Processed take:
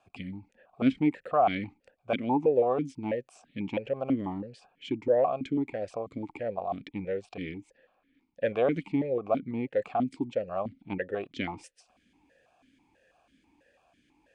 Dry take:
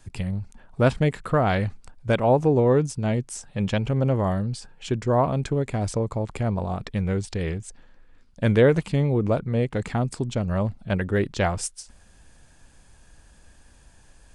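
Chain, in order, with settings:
formant filter that steps through the vowels 6.1 Hz
level +6 dB

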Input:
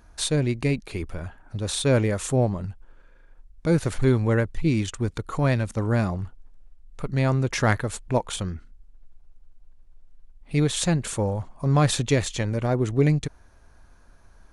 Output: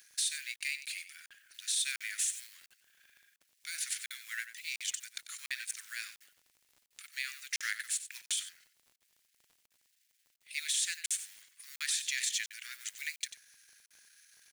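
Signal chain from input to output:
mu-law and A-law mismatch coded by mu
Butterworth high-pass 1,700 Hz 48 dB per octave
high-shelf EQ 3,700 Hz +10.5 dB
brickwall limiter −17 dBFS, peak gain reduction 10.5 dB
surface crackle 32 per second −44 dBFS
single-tap delay 93 ms −12.5 dB
regular buffer underruns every 0.70 s, samples 2,048, zero, from 0:00.56
level −5 dB

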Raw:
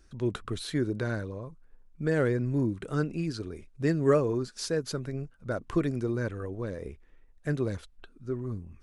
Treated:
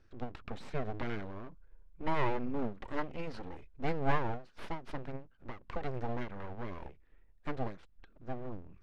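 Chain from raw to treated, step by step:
0:01.46–0:03.84: comb filter 2 ms, depth 56%
full-wave rectification
low-pass filter 3,300 Hz 12 dB per octave
every ending faded ahead of time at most 170 dB per second
level −3.5 dB

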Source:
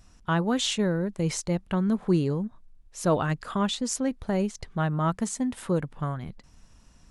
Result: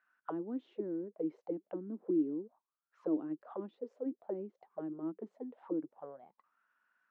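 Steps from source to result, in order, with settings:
envelope filter 310–1,600 Hz, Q 9.8, down, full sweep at −22.5 dBFS
three-way crossover with the lows and the highs turned down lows −23 dB, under 180 Hz, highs −22 dB, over 4,000 Hz
level +2 dB

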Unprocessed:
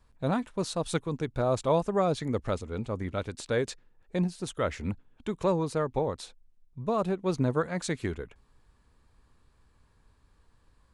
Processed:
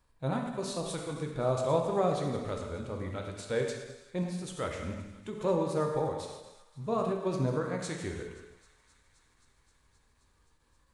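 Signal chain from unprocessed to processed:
delay that plays each chunk backwards 103 ms, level −11 dB
high-shelf EQ 9,000 Hz +5.5 dB
harmonic and percussive parts rebalanced harmonic +6 dB
low-shelf EQ 150 Hz −6 dB
on a send: feedback echo with a high-pass in the loop 263 ms, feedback 84%, high-pass 950 Hz, level −21 dB
on the sum: reverb whose tail is shaped and stops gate 420 ms falling, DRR 2 dB
every ending faded ahead of time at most 120 dB per second
level −7.5 dB

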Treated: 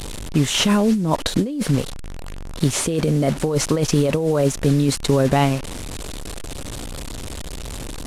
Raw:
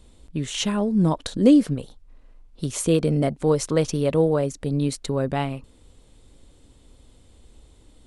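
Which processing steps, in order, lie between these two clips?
linear delta modulator 64 kbit/s, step −34 dBFS
compressor whose output falls as the input rises −24 dBFS, ratio −1
level +6.5 dB

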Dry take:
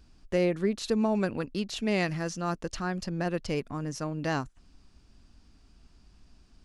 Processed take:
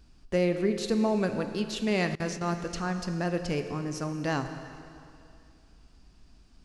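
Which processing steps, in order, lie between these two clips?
dense smooth reverb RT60 2.5 s, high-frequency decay 0.95×, DRR 7 dB
0:02.15–0:02.57: noise gate with hold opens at −22 dBFS

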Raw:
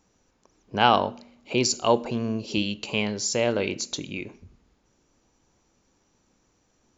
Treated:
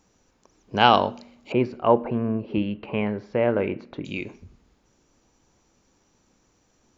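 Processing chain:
0:01.52–0:04.05: low-pass filter 2,000 Hz 24 dB per octave
level +2.5 dB

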